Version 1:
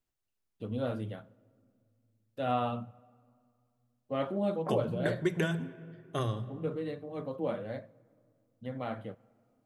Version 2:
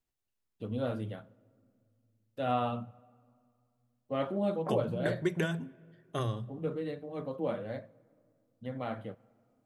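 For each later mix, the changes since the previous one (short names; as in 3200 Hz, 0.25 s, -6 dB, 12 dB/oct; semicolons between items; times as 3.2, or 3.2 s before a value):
second voice: send -9.5 dB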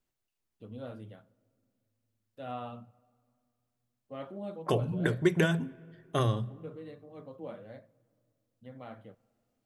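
first voice -9.0 dB; second voice +5.5 dB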